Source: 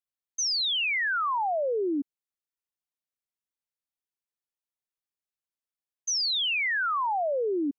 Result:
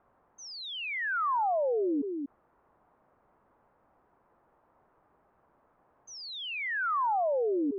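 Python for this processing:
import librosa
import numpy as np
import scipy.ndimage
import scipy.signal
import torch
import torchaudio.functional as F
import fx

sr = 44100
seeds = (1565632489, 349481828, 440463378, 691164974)

p1 = scipy.signal.sosfilt(scipy.signal.butter(4, 1100.0, 'lowpass', fs=sr, output='sos'), x)
p2 = fx.low_shelf(p1, sr, hz=460.0, db=-7.0)
p3 = p2 + fx.echo_single(p2, sr, ms=239, db=-20.5, dry=0)
p4 = fx.env_flatten(p3, sr, amount_pct=70)
y = p4 * librosa.db_to_amplitude(1.5)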